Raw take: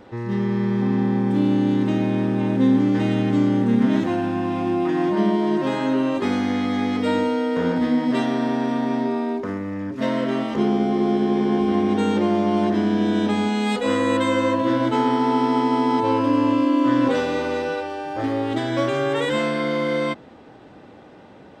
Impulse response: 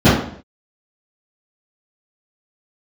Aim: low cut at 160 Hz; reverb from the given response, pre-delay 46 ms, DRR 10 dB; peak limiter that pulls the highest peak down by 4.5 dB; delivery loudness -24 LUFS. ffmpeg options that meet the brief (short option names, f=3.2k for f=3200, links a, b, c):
-filter_complex "[0:a]highpass=160,alimiter=limit=-13.5dB:level=0:latency=1,asplit=2[a][b];[1:a]atrim=start_sample=2205,adelay=46[c];[b][c]afir=irnorm=-1:irlink=0,volume=-37.5dB[d];[a][d]amix=inputs=2:normalize=0,volume=-4dB"